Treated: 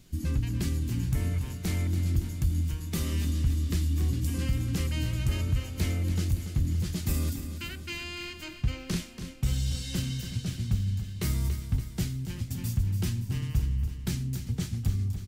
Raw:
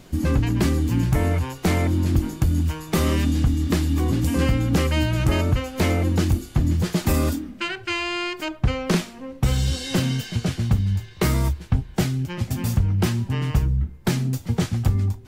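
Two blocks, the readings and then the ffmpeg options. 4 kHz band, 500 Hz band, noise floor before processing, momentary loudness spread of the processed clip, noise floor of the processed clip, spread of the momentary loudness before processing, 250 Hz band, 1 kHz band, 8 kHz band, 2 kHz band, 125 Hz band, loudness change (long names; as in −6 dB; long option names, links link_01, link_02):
−8.5 dB, −16.5 dB, −42 dBFS, 6 LU, −42 dBFS, 5 LU, −11.0 dB, −18.0 dB, −6.0 dB, −12.0 dB, −7.0 dB, −8.0 dB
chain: -filter_complex "[0:a]equalizer=frequency=740:width_type=o:width=2.9:gain=-14.5,asplit=2[link_01][link_02];[link_02]aecho=0:1:284|568|852|1136|1420|1704|1988:0.316|0.187|0.11|0.0649|0.0383|0.0226|0.0133[link_03];[link_01][link_03]amix=inputs=2:normalize=0,volume=-5.5dB"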